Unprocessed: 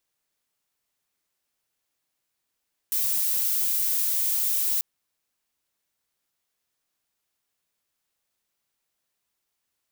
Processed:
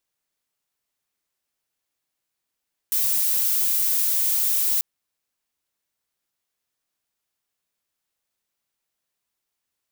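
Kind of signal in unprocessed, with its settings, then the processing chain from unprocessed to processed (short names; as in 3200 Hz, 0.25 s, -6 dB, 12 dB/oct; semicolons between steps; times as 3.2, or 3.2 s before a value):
noise violet, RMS -24.5 dBFS 1.89 s
sample leveller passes 1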